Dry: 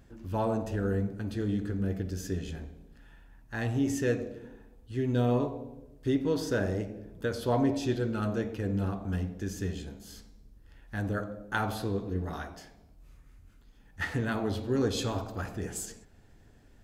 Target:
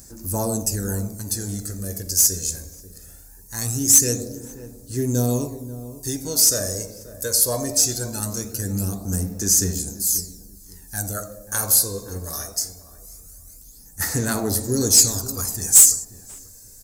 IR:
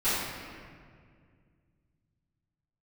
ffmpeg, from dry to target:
-filter_complex "[0:a]aphaser=in_gain=1:out_gain=1:delay=1.9:decay=0.54:speed=0.21:type=sinusoidal,aexciter=amount=15.4:drive=9.8:freq=5100,asoftclip=type=tanh:threshold=0.631,asplit=2[s0][s1];[s1]adelay=536,lowpass=f=990:p=1,volume=0.2,asplit=2[s2][s3];[s3]adelay=536,lowpass=f=990:p=1,volume=0.27,asplit=2[s4][s5];[s5]adelay=536,lowpass=f=990:p=1,volume=0.27[s6];[s0][s2][s4][s6]amix=inputs=4:normalize=0"

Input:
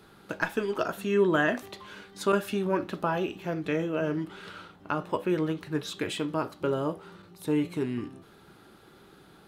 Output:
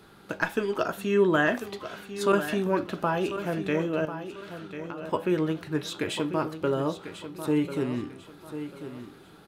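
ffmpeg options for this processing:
-filter_complex "[0:a]asettb=1/sr,asplit=3[s0][s1][s2];[s0]atrim=end=4.054[s3];[s1]atrim=start=4.05:end=5.03,asetpts=PTS-STARTPTS,afade=t=in:d=0.004:c=qsin,afade=t=out:st=0.976:d=0.004:c=qsin,acompressor=threshold=0.00316:ratio=2[s4];[s2]atrim=start=5.026[s5];[s3][s4]acrossfade=d=0.004:c1=hsin:c2=qsin[s6];[s6][s5]acrossfade=d=0.004:c1=qsin:c2=hsin,aecho=1:1:1044|2088|3132:0.282|0.0874|0.0271,volume=1.19"

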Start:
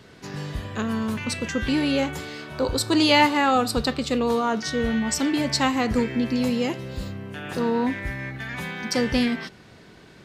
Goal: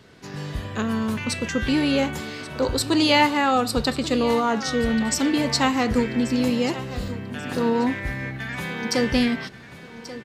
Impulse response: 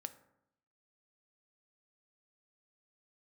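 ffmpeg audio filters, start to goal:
-af "dynaudnorm=f=160:g=5:m=1.5,aecho=1:1:1135|2270|3405:0.178|0.064|0.023,volume=0.794"

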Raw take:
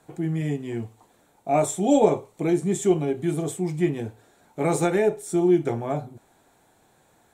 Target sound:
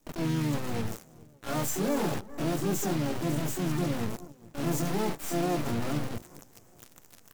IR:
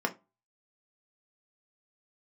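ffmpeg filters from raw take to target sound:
-filter_complex "[0:a]firequalizer=gain_entry='entry(220,0);entry(370,-11);entry(1300,-19);entry(3800,-28);entry(5800,2);entry(11000,-12)':delay=0.05:min_phase=1,areverse,acompressor=mode=upward:threshold=0.0158:ratio=2.5,areverse,acrusher=bits=8:dc=4:mix=0:aa=0.000001,asplit=2[s0][s1];[s1]adelay=413,lowpass=f=2800:p=1,volume=0.0668,asplit=2[s2][s3];[s3]adelay=413,lowpass=f=2800:p=1,volume=0.44,asplit=2[s4][s5];[s5]adelay=413,lowpass=f=2800:p=1,volume=0.44[s6];[s2][s4][s6]amix=inputs=3:normalize=0[s7];[s0][s7]amix=inputs=2:normalize=0,asoftclip=type=hard:threshold=0.0447,aeval=exprs='0.0447*(cos(1*acos(clip(val(0)/0.0447,-1,1)))-cos(1*PI/2))+0.000316*(cos(2*acos(clip(val(0)/0.0447,-1,1)))-cos(2*PI/2))+0.000447*(cos(5*acos(clip(val(0)/0.0447,-1,1)))-cos(5*PI/2))+0.000282*(cos(6*acos(clip(val(0)/0.0447,-1,1)))-cos(6*PI/2))+0.0112*(cos(8*acos(clip(val(0)/0.0447,-1,1)))-cos(8*PI/2))':c=same,asplit=4[s8][s9][s10][s11];[s9]asetrate=37084,aresample=44100,atempo=1.18921,volume=0.501[s12];[s10]asetrate=66075,aresample=44100,atempo=0.66742,volume=0.316[s13];[s11]asetrate=88200,aresample=44100,atempo=0.5,volume=0.794[s14];[s8][s12][s13][s14]amix=inputs=4:normalize=0,volume=0.794"

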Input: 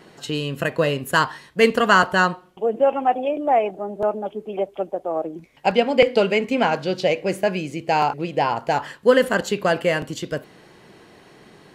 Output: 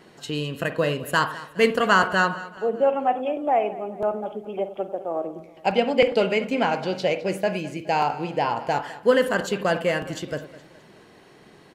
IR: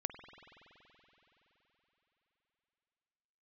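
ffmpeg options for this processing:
-filter_complex "[0:a]aecho=1:1:209|418|627|836:0.133|0.0627|0.0295|0.0138[s0];[1:a]atrim=start_sample=2205,atrim=end_sample=4410[s1];[s0][s1]afir=irnorm=-1:irlink=0,volume=0.794"

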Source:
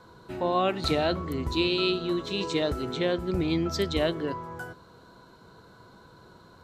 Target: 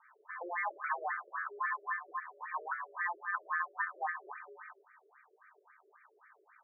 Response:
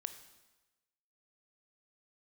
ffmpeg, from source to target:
-filter_complex "[0:a]aeval=exprs='val(0)*sin(2*PI*1400*n/s)':c=same,asplit=2[s0][s1];[1:a]atrim=start_sample=2205,lowshelf=f=280:g=11.5[s2];[s1][s2]afir=irnorm=-1:irlink=0,volume=0.562[s3];[s0][s3]amix=inputs=2:normalize=0,afftfilt=real='re*between(b*sr/1024,430*pow(1700/430,0.5+0.5*sin(2*PI*3.7*pts/sr))/1.41,430*pow(1700/430,0.5+0.5*sin(2*PI*3.7*pts/sr))*1.41)':imag='im*between(b*sr/1024,430*pow(1700/430,0.5+0.5*sin(2*PI*3.7*pts/sr))/1.41,430*pow(1700/430,0.5+0.5*sin(2*PI*3.7*pts/sr))*1.41)':win_size=1024:overlap=0.75,volume=0.501"

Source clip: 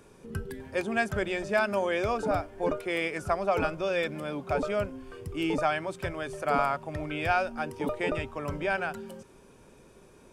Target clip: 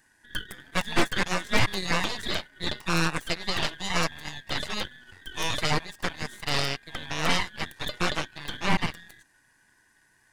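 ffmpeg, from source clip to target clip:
-af "afftfilt=real='real(if(lt(b,272),68*(eq(floor(b/68),0)*1+eq(floor(b/68),1)*0+eq(floor(b/68),2)*3+eq(floor(b/68),3)*2)+mod(b,68),b),0)':imag='imag(if(lt(b,272),68*(eq(floor(b/68),0)*1+eq(floor(b/68),1)*0+eq(floor(b/68),2)*3+eq(floor(b/68),3)*2)+mod(b,68),b),0)':win_size=2048:overlap=0.75,equalizer=f=2300:w=1.3:g=-14,aeval=exprs='0.126*(cos(1*acos(clip(val(0)/0.126,-1,1)))-cos(1*PI/2))+0.0501*(cos(3*acos(clip(val(0)/0.126,-1,1)))-cos(3*PI/2))+0.0562*(cos(6*acos(clip(val(0)/0.126,-1,1)))-cos(6*PI/2))+0.00355*(cos(7*acos(clip(val(0)/0.126,-1,1)))-cos(7*PI/2))':c=same,volume=2.11"

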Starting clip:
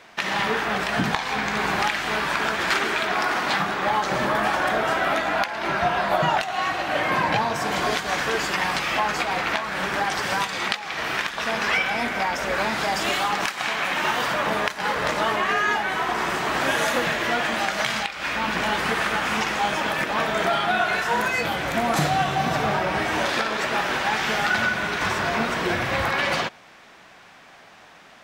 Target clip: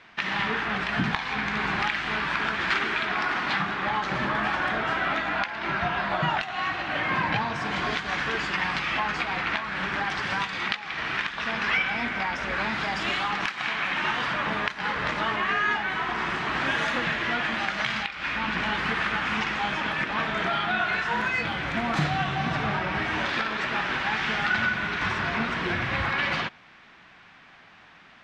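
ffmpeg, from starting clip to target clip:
-af "lowpass=3300,equalizer=f=560:w=0.9:g=-9.5"

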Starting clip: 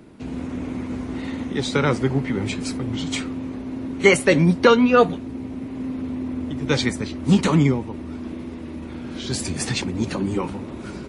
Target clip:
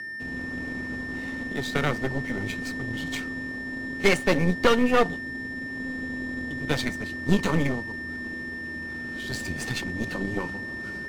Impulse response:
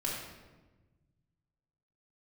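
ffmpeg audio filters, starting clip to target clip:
-af "aeval=exprs='0.891*(cos(1*acos(clip(val(0)/0.891,-1,1)))-cos(1*PI/2))+0.158*(cos(6*acos(clip(val(0)/0.891,-1,1)))-cos(6*PI/2))':c=same,aeval=exprs='val(0)+0.0501*sin(2*PI*1800*n/s)':c=same,adynamicsmooth=sensitivity=7.5:basefreq=1800,volume=0.447"

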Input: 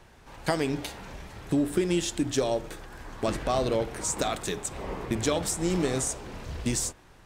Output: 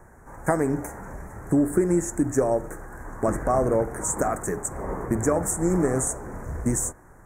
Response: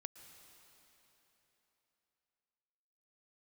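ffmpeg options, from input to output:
-af "asuperstop=centerf=3600:order=8:qfactor=0.72,volume=1.68"

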